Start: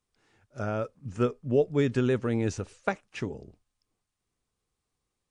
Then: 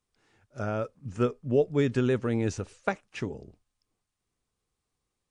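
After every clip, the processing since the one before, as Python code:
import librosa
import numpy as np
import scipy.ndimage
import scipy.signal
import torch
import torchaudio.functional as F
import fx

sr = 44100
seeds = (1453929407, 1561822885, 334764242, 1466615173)

y = x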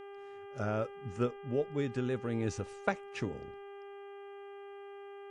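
y = fx.rider(x, sr, range_db=3, speed_s=0.5)
y = fx.dmg_buzz(y, sr, base_hz=400.0, harmonics=8, level_db=-42.0, tilt_db=-8, odd_only=False)
y = F.gain(torch.from_numpy(y), -6.0).numpy()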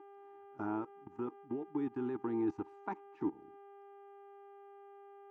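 y = fx.level_steps(x, sr, step_db=19)
y = fx.double_bandpass(y, sr, hz=540.0, octaves=1.5)
y = F.gain(torch.from_numpy(y), 14.0).numpy()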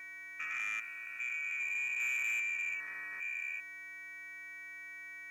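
y = fx.spec_steps(x, sr, hold_ms=400)
y = fx.freq_invert(y, sr, carrier_hz=2700)
y = fx.leveller(y, sr, passes=2)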